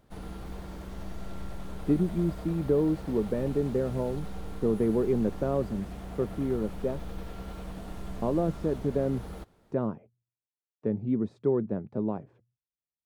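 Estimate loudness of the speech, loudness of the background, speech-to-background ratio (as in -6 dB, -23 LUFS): -30.0 LUFS, -42.0 LUFS, 12.0 dB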